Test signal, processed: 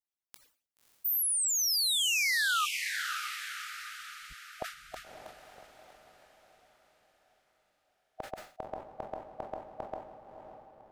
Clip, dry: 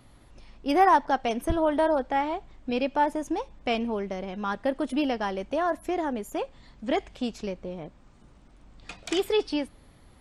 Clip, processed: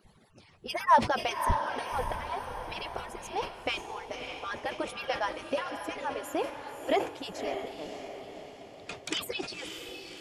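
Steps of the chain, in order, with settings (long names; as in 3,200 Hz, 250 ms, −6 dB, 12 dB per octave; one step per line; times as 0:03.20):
harmonic-percussive split with one part muted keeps percussive
on a send: feedback delay with all-pass diffusion 578 ms, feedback 50%, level −6.5 dB
on the sum: level that may fall only so fast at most 140 dB per second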